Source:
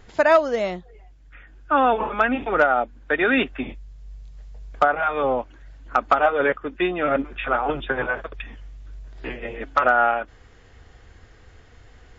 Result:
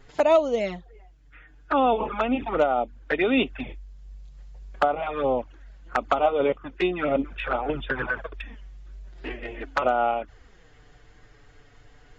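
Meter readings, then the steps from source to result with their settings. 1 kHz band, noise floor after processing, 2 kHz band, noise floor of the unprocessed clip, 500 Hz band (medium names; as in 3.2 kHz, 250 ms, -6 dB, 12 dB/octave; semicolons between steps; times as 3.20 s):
-4.5 dB, -54 dBFS, -7.5 dB, -50 dBFS, -2.0 dB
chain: touch-sensitive flanger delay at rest 8 ms, full sweep at -17.5 dBFS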